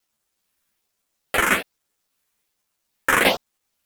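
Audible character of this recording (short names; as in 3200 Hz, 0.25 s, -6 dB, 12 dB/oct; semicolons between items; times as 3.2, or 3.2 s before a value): phasing stages 4, 1.2 Hz, lowest notch 710–4400 Hz; a quantiser's noise floor 12-bit, dither none; a shimmering, thickened sound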